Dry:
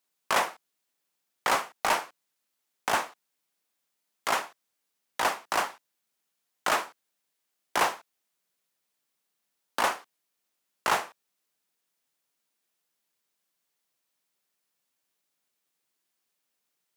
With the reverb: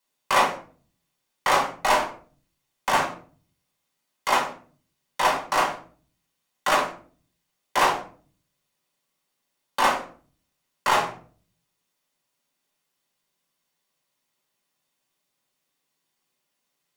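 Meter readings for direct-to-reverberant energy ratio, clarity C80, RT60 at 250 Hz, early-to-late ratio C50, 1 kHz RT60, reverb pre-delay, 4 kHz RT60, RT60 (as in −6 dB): −1.0 dB, 13.5 dB, 0.70 s, 9.0 dB, 0.40 s, 4 ms, 0.25 s, 0.45 s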